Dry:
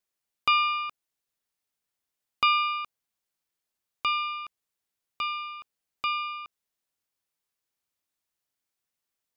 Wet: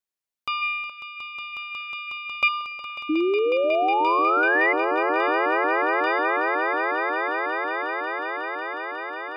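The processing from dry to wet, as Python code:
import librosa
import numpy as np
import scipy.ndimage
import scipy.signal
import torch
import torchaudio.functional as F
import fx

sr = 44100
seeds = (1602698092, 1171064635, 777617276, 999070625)

y = fx.small_body(x, sr, hz=(580.0, 2400.0), ring_ms=20, db=fx.line((0.61, 12.0), (2.47, 15.0)), at=(0.61, 2.47), fade=0.02)
y = fx.spec_paint(y, sr, seeds[0], shape='rise', start_s=3.09, length_s=1.64, low_hz=300.0, high_hz=2100.0, level_db=-16.0)
y = fx.echo_swell(y, sr, ms=182, loudest=8, wet_db=-9.5)
y = y * librosa.db_to_amplitude(-5.5)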